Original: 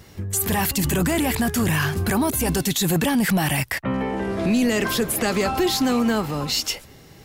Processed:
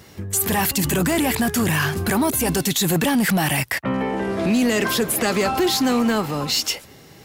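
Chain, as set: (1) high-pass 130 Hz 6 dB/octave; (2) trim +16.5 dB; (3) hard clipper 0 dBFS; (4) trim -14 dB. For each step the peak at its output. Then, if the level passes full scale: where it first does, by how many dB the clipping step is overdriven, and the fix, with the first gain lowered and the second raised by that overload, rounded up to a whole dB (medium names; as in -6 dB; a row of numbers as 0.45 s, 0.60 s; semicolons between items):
-11.5 dBFS, +5.0 dBFS, 0.0 dBFS, -14.0 dBFS; step 2, 5.0 dB; step 2 +11.5 dB, step 4 -9 dB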